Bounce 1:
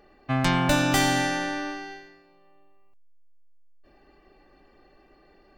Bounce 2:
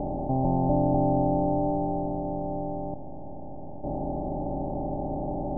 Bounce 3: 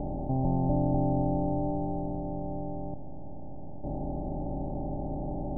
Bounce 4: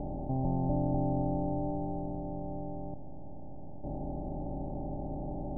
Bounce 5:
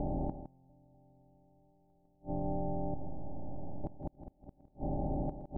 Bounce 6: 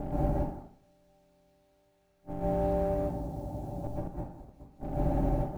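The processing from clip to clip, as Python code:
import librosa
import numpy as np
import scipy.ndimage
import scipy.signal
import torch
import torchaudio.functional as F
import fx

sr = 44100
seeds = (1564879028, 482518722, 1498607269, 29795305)

y1 = fx.bin_compress(x, sr, power=0.2)
y1 = scipy.signal.sosfilt(scipy.signal.butter(12, 860.0, 'lowpass', fs=sr, output='sos'), y1)
y1 = y1 * librosa.db_to_amplitude(-3.5)
y2 = fx.low_shelf(y1, sr, hz=260.0, db=8.5)
y2 = y2 * librosa.db_to_amplitude(-7.5)
y3 = fx.end_taper(y2, sr, db_per_s=140.0)
y3 = y3 * librosa.db_to_amplitude(-3.5)
y4 = fx.gate_flip(y3, sr, shuts_db=-27.0, range_db=-37)
y4 = y4 + 10.0 ** (-10.5 / 20.0) * np.pad(y4, (int(161 * sr / 1000.0), 0))[:len(y4)]
y4 = y4 * librosa.db_to_amplitude(2.5)
y5 = fx.law_mismatch(y4, sr, coded='A')
y5 = fx.rev_plate(y5, sr, seeds[0], rt60_s=0.55, hf_ratio=0.85, predelay_ms=110, drr_db=-6.5)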